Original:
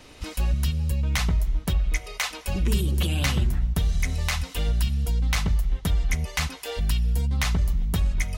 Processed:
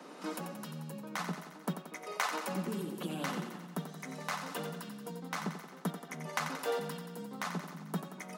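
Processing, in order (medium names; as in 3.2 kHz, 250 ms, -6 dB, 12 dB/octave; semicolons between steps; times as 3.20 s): resonant high shelf 1.8 kHz -8.5 dB, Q 1.5; compression, threshold -28 dBFS, peak gain reduction 10.5 dB; steep high-pass 160 Hz 96 dB/octave; thinning echo 89 ms, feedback 65%, high-pass 210 Hz, level -8 dB; trim +1 dB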